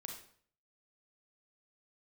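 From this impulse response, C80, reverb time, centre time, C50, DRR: 9.0 dB, 0.55 s, 29 ms, 4.5 dB, 1.5 dB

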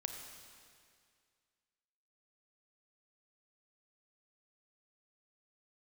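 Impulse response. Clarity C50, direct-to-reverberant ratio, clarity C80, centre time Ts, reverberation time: 5.0 dB, 4.0 dB, 5.5 dB, 53 ms, 2.1 s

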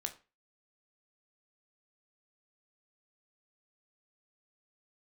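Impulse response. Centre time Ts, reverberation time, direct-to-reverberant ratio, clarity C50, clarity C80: 8 ms, 0.30 s, 6.0 dB, 14.5 dB, 20.0 dB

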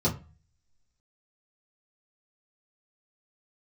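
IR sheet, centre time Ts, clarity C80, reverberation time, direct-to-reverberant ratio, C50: 15 ms, 19.5 dB, 0.35 s, −8.0 dB, 14.0 dB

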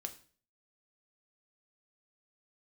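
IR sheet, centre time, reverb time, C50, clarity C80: 8 ms, 0.45 s, 14.0 dB, 18.0 dB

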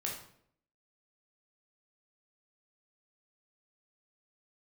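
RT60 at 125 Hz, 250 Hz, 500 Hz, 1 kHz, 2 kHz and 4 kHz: 0.75, 0.75, 0.75, 0.60, 0.55, 0.50 seconds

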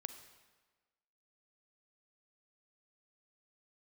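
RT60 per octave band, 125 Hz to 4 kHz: 1.3, 1.3, 1.4, 1.4, 1.3, 1.1 seconds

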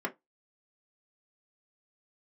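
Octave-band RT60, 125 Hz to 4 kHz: 0.20, 0.15, 0.15, 0.15, 0.15, 0.15 seconds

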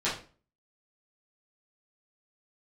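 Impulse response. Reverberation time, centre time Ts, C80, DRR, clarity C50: 0.40 s, 32 ms, 12.0 dB, −10.5 dB, 6.0 dB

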